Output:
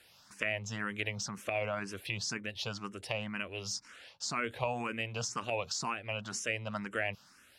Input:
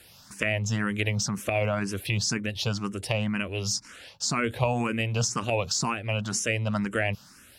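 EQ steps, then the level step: bass shelf 360 Hz -11 dB; treble shelf 6.3 kHz -10 dB; -4.5 dB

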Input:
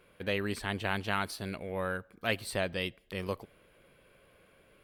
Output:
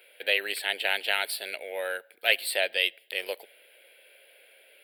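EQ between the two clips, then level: high-pass 540 Hz 24 dB/octave; treble shelf 3.1 kHz +7 dB; static phaser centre 2.7 kHz, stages 4; +9.0 dB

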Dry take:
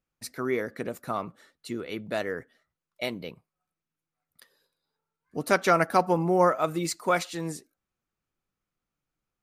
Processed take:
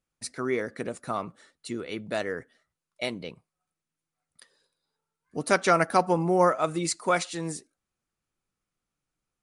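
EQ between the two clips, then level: brick-wall FIR low-pass 11 kHz; treble shelf 7.8 kHz +7.5 dB; 0.0 dB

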